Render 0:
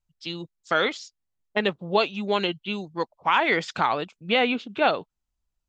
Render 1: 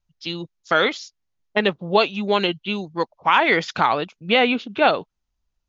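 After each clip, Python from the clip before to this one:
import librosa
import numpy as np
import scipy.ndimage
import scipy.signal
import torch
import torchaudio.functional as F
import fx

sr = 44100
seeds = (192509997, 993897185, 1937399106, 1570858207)

y = scipy.signal.sosfilt(scipy.signal.butter(16, 6900.0, 'lowpass', fs=sr, output='sos'), x)
y = y * librosa.db_to_amplitude(4.5)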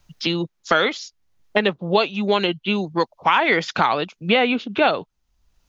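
y = fx.band_squash(x, sr, depth_pct=70)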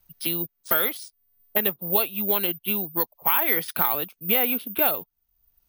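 y = (np.kron(scipy.signal.resample_poly(x, 1, 3), np.eye(3)[0]) * 3)[:len(x)]
y = y * librosa.db_to_amplitude(-9.0)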